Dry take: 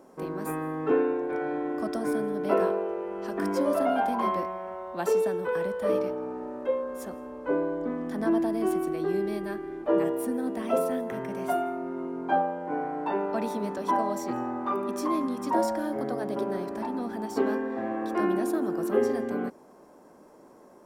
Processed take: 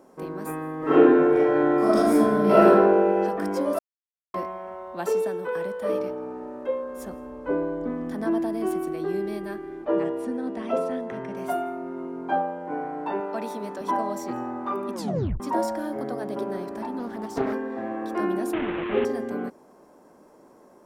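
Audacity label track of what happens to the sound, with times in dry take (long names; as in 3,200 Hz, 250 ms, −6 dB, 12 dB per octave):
0.780000	3.200000	thrown reverb, RT60 1.2 s, DRR −10.5 dB
3.790000	4.340000	silence
5.250000	6.000000	high-pass filter 130 Hz 6 dB per octave
6.970000	8.150000	low-shelf EQ 130 Hz +10 dB
9.850000	11.370000	low-pass filter 5,800 Hz
13.200000	13.810000	high-pass filter 270 Hz 6 dB per octave
14.930000	14.930000	tape stop 0.47 s
16.990000	17.530000	highs frequency-modulated by the lows depth 0.41 ms
18.530000	19.050000	linear delta modulator 16 kbit/s, step −24 dBFS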